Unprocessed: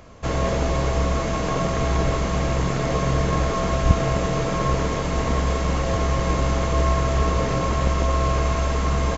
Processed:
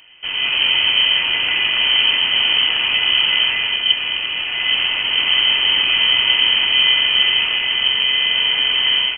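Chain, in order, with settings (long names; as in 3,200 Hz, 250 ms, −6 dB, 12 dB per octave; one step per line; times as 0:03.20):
automatic gain control gain up to 9 dB
voice inversion scrambler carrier 3,100 Hz
level −2.5 dB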